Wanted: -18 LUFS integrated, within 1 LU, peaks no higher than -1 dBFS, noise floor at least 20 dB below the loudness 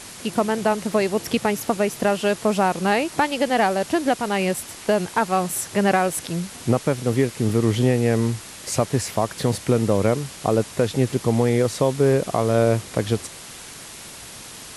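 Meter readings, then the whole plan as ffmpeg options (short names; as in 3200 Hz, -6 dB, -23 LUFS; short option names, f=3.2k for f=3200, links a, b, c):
noise floor -39 dBFS; noise floor target -42 dBFS; loudness -22.0 LUFS; peak -5.5 dBFS; loudness target -18.0 LUFS
-> -af "afftdn=nr=6:nf=-39"
-af "volume=4dB"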